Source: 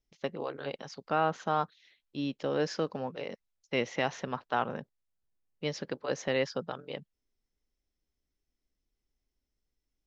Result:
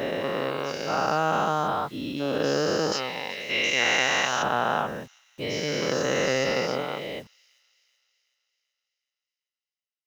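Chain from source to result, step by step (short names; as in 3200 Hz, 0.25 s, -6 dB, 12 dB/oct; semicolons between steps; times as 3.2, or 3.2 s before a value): spectral dilation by 0.48 s; 2.92–4.43 tilt shelf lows -9 dB, about 1200 Hz; bit-crush 9-bit; thin delay 0.38 s, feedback 52%, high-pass 3500 Hz, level -21 dB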